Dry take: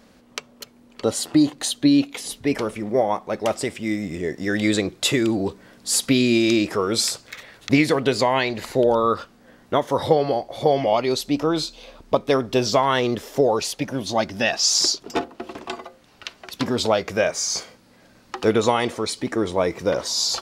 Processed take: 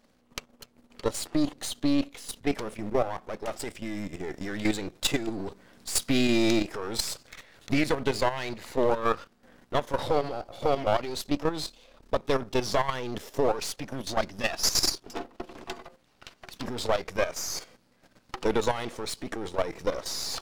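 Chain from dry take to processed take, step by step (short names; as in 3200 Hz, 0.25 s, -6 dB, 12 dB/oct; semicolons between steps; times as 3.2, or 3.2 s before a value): half-wave gain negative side -12 dB; level quantiser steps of 11 dB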